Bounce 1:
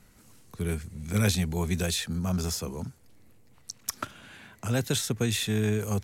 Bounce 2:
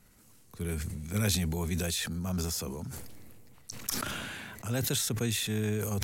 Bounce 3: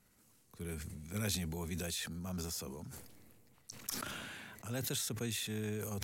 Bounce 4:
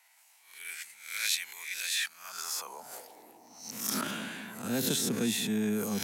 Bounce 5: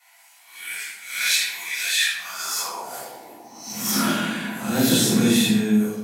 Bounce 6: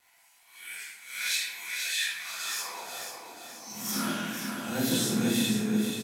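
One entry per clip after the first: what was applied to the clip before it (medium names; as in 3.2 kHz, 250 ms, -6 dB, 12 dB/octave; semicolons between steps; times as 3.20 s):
treble shelf 11 kHz +8 dB; decay stretcher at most 23 dB/s; trim -5 dB
bass shelf 80 Hz -7 dB; trim -7 dB
reverse spectral sustain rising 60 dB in 0.53 s; band noise 630–960 Hz -65 dBFS; high-pass sweep 2.1 kHz -> 210 Hz, 2.08–3.67 s; trim +4.5 dB
fade out at the end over 0.63 s; reverberation RT60 0.80 s, pre-delay 4 ms, DRR -11 dB; trim -2.5 dB
crackle 98 per s -45 dBFS; feedback comb 510 Hz, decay 0.49 s; feedback delay 486 ms, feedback 46%, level -7 dB; trim -1.5 dB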